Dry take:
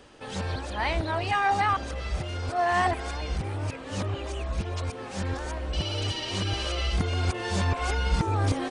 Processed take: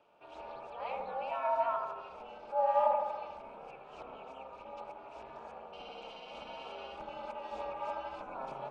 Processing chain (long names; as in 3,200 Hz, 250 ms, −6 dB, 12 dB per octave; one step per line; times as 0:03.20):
formant filter a
ring modulation 130 Hz
bucket-brigade delay 80 ms, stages 1,024, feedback 61%, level −3.5 dB